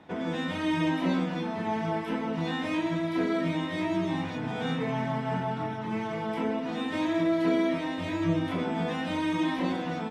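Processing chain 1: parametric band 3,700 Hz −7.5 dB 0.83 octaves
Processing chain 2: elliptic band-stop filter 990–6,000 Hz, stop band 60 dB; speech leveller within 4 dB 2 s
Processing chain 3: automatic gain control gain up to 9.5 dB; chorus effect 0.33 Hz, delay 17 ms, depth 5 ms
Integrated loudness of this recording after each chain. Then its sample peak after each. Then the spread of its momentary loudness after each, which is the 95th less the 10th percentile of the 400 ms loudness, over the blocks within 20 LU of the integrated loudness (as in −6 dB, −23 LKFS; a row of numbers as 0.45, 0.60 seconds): −30.0, −30.0, −23.5 LKFS; −15.5, −15.5, −9.5 dBFS; 5, 5, 6 LU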